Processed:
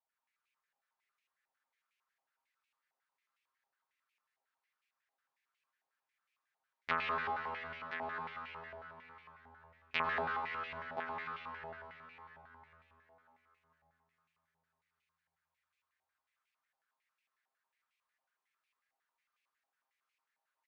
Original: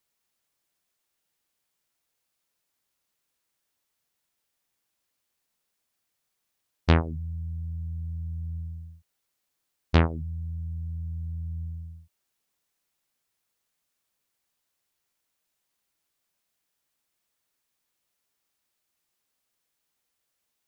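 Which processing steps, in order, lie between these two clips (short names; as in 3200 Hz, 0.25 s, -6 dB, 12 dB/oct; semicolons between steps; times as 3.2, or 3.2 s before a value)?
comb 7.5 ms, depth 87%; echo 1.027 s -8 dB; plate-style reverb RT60 4.6 s, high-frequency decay 0.85×, pre-delay 80 ms, DRR -3 dB; stepped band-pass 11 Hz 800–2400 Hz; gain -1 dB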